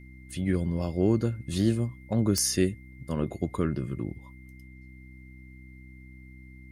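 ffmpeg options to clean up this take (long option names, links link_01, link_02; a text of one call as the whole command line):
ffmpeg -i in.wav -af "adeclick=threshold=4,bandreject=frequency=64:width_type=h:width=4,bandreject=frequency=128:width_type=h:width=4,bandreject=frequency=192:width_type=h:width=4,bandreject=frequency=256:width_type=h:width=4,bandreject=frequency=320:width_type=h:width=4,bandreject=frequency=2100:width=30" out.wav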